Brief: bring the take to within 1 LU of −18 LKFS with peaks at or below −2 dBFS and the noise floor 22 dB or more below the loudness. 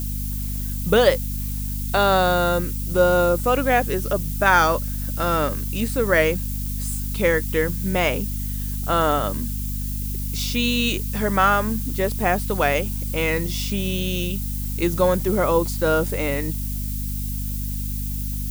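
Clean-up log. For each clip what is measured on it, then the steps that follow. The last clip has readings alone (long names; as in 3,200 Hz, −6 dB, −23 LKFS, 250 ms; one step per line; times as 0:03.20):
mains hum 50 Hz; hum harmonics up to 250 Hz; level of the hum −25 dBFS; background noise floor −27 dBFS; target noise floor −44 dBFS; integrated loudness −22.0 LKFS; sample peak −3.0 dBFS; target loudness −18.0 LKFS
→ hum removal 50 Hz, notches 5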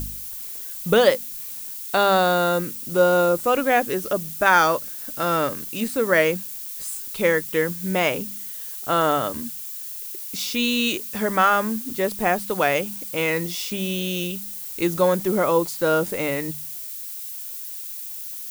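mains hum none found; background noise floor −34 dBFS; target noise floor −45 dBFS
→ noise reduction from a noise print 11 dB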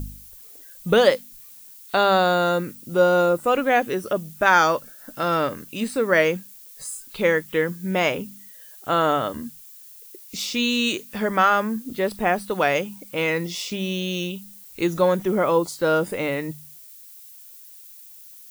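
background noise floor −45 dBFS; integrated loudness −22.0 LKFS; sample peak −3.0 dBFS; target loudness −18.0 LKFS
→ level +4 dB
brickwall limiter −2 dBFS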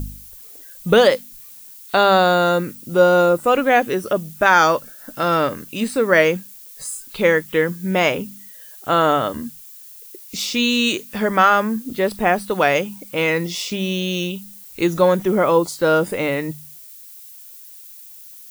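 integrated loudness −18.0 LKFS; sample peak −2.0 dBFS; background noise floor −41 dBFS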